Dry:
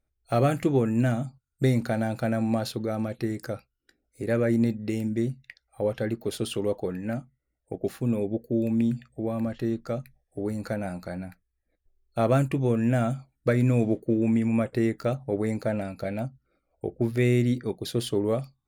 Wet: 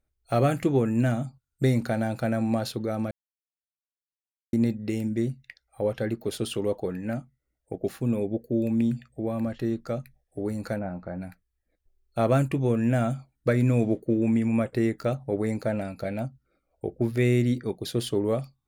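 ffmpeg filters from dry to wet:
ffmpeg -i in.wav -filter_complex "[0:a]asplit=3[link_01][link_02][link_03];[link_01]afade=type=out:start_time=10.78:duration=0.02[link_04];[link_02]lowpass=1400,afade=type=in:start_time=10.78:duration=0.02,afade=type=out:start_time=11.2:duration=0.02[link_05];[link_03]afade=type=in:start_time=11.2:duration=0.02[link_06];[link_04][link_05][link_06]amix=inputs=3:normalize=0,asplit=3[link_07][link_08][link_09];[link_07]atrim=end=3.11,asetpts=PTS-STARTPTS,afade=type=out:start_time=3.106:duration=0.004:curve=hsin[link_10];[link_08]atrim=start=3.11:end=4.53,asetpts=PTS-STARTPTS,volume=0[link_11];[link_09]atrim=start=4.53,asetpts=PTS-STARTPTS,afade=type=in:duration=0.004:curve=hsin[link_12];[link_10][link_11][link_12]concat=n=3:v=0:a=1" out.wav

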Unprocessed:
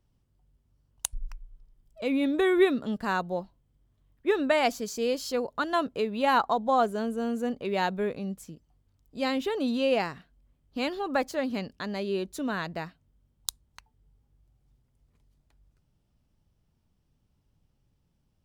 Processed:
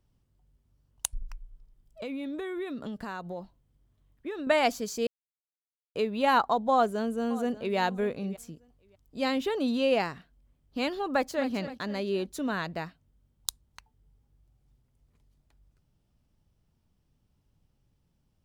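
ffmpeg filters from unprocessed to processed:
ffmpeg -i in.wav -filter_complex "[0:a]asettb=1/sr,asplit=3[link_01][link_02][link_03];[link_01]atrim=end=1.224[link_04];[link_02]atrim=start=1.22:end=4.47,asetpts=PTS-STARTPTS,afade=type=in:duration=0.004:curve=qsin,afade=type=out:start_time=3.246:duration=0.004:curve=qsin,acompressor=threshold=-33dB:ratio=6:attack=3.2:release=140:knee=1:detection=peak[link_05];[link_03]atrim=start=4.466[link_06];[link_04][link_05]acrossfade=duration=0.004:curve1=hsin:curve2=qsin[link_07];[link_07][link_06]acrossfade=duration=0.004:curve1=qsin:curve2=hsin,asplit=2[link_08][link_09];[link_09]afade=type=in:start_time=6.71:duration=0.01,afade=type=out:start_time=7.77:duration=0.01,aecho=0:1:590|1180:0.141254|0.0211881[link_10];[link_08][link_10]amix=inputs=2:normalize=0,asplit=2[link_11][link_12];[link_12]afade=type=in:start_time=11.1:duration=0.01,afade=type=out:start_time=11.51:duration=0.01,aecho=0:1:260|520|780|1040|1300:0.251189|0.113035|0.0508657|0.0228896|0.0103003[link_13];[link_11][link_13]amix=inputs=2:normalize=0,asplit=3[link_14][link_15][link_16];[link_14]atrim=end=5.07,asetpts=PTS-STARTPTS,afade=type=out:start_time=5.066:duration=0.004:curve=hsin[link_17];[link_15]atrim=start=5.07:end=5.95,asetpts=PTS-STARTPTS,volume=0[link_18];[link_16]atrim=start=5.95,asetpts=PTS-STARTPTS,afade=type=in:duration=0.004:curve=hsin[link_19];[link_17][link_18][link_19]concat=n=3:v=0:a=1" out.wav

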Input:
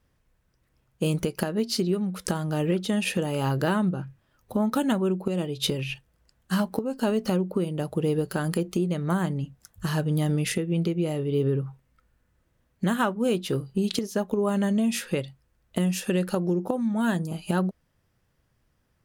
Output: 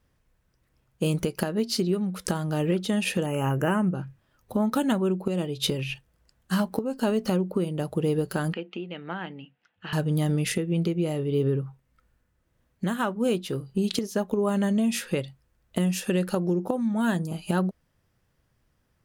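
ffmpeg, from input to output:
ffmpeg -i in.wav -filter_complex "[0:a]asettb=1/sr,asplit=3[link_01][link_02][link_03];[link_01]atrim=end=3.264[link_04];[link_02]atrim=start=3.26:end=3.95,asetpts=PTS-STARTPTS,afade=type=in:duration=0.004:curve=qsin,afade=type=out:start_time=0.686:duration=0.004:curve=qsin,asuperstop=centerf=4100:order=12:qfactor=1.6[link_05];[link_03]atrim=start=3.946[link_06];[link_04][link_05]acrossfade=duration=0.004:curve1=hsin:curve2=qsin[link_07];[link_07][link_06]acrossfade=duration=0.004:curve1=qsin:curve2=hsin,asettb=1/sr,asplit=3[link_08][link_09][link_10];[link_08]atrim=end=8.534[link_11];[link_09]atrim=start=8.53:end=9.93,asetpts=PTS-STARTPTS,afade=type=in:duration=0.004:curve=qsin,afade=type=out:start_time=1.396:duration=0.004:curve=qsin,highpass=380,equalizer=frequency=390:width_type=q:width=4:gain=-7,equalizer=frequency=600:width_type=q:width=4:gain=-8,equalizer=frequency=1100:width_type=q:width=4:gain=-9,equalizer=frequency=2800:width_type=q:width=4:gain=7,lowpass=frequency=3100:width=0.5412,lowpass=frequency=3100:width=1.3066[link_12];[link_10]atrim=start=9.926[link_13];[link_11][link_12]acrossfade=duration=0.004:curve1=hsin:curve2=qsin[link_14];[link_14][link_13]acrossfade=duration=0.004:curve1=qsin:curve2=hsin,asettb=1/sr,asplit=3[link_15][link_16][link_17];[link_15]atrim=end=11.484[link_18];[link_16]atrim=start=11.48:end=13.8,asetpts=PTS-STARTPTS,afade=type=in:duration=0.004:curve=qsin,afade=type=out:start_time=2.316:duration=0.004:curve=qsin,tremolo=f=1.7:d=0.33[link_19];[link_17]atrim=start=13.796[link_20];[link_18][link_19]acrossfade=duration=0.004:curve1=hsin:curve2=qsin[link_21];[link_21][link_20]acrossfade=duration=0.004:curve1=qsin:curve2=hsin" out.wav

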